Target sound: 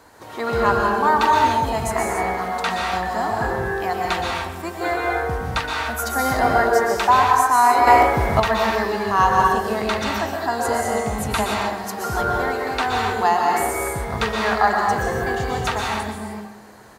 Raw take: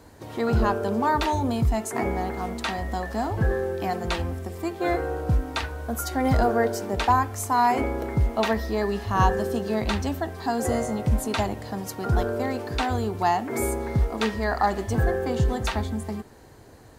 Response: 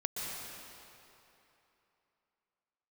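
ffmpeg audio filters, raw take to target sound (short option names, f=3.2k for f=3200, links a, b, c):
-filter_complex "[0:a]lowshelf=f=350:g=-11,asplit=2[a][b];[b]adelay=134,lowpass=f=4k:p=1,volume=-12.5dB,asplit=2[c][d];[d]adelay=134,lowpass=f=4k:p=1,volume=0.49,asplit=2[e][f];[f]adelay=134,lowpass=f=4k:p=1,volume=0.49,asplit=2[g][h];[h]adelay=134,lowpass=f=4k:p=1,volume=0.49,asplit=2[i][j];[j]adelay=134,lowpass=f=4k:p=1,volume=0.49[k];[a][c][e][g][i][k]amix=inputs=6:normalize=0[l];[1:a]atrim=start_sample=2205,afade=t=out:st=0.36:d=0.01,atrim=end_sample=16317[m];[l][m]afir=irnorm=-1:irlink=0,asettb=1/sr,asplit=3[n][o][p];[n]atrim=end=7.874[q];[o]atrim=start=7.87:end=8.4,asetpts=PTS-STARTPTS,afade=t=in:d=0.004:c=qsin,afade=t=out:st=0.526:d=0.004:c=qsin,acontrast=52[r];[p]atrim=start=8.396[s];[q][r]acrossfade=d=0.004:c1=hsin:c2=qsin[t];[t][s]acrossfade=d=0.004:c1=qsin:c2=hsin,equalizer=f=1.2k:t=o:w=1.4:g=5.5,volume=3.5dB"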